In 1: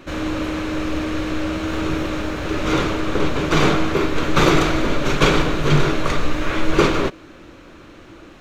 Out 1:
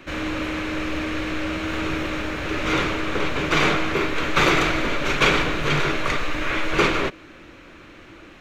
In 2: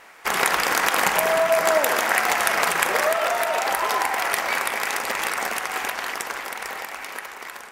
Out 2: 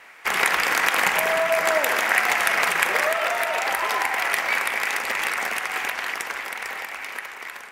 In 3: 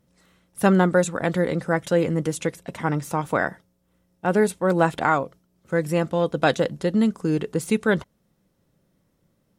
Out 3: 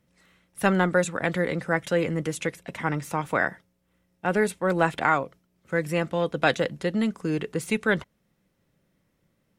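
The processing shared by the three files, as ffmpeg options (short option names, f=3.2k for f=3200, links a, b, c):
-filter_complex "[0:a]equalizer=f=2.2k:w=1.2:g=7,acrossover=split=410|2000[a][b][c];[a]asoftclip=type=tanh:threshold=-16dB[d];[d][b][c]amix=inputs=3:normalize=0,volume=-3.5dB"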